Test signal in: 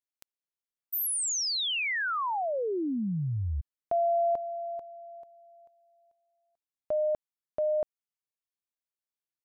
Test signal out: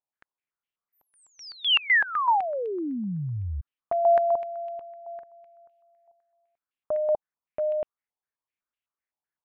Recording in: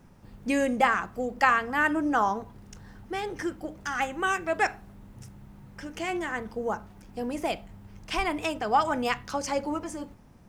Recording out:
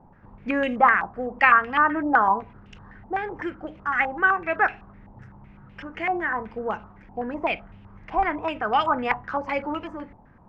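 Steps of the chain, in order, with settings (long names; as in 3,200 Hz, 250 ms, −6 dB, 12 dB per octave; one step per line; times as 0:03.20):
low-pass on a step sequencer 7.9 Hz 840–2,800 Hz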